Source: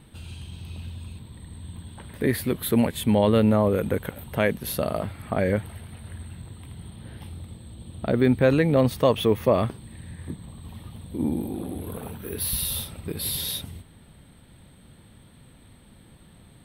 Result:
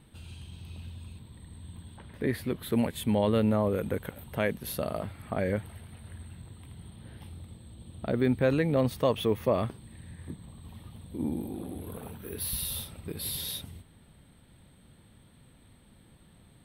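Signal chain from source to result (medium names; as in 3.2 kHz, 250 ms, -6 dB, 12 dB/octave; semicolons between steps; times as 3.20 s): 1.97–2.72 s: treble shelf 7.2 kHz -10 dB; trim -6 dB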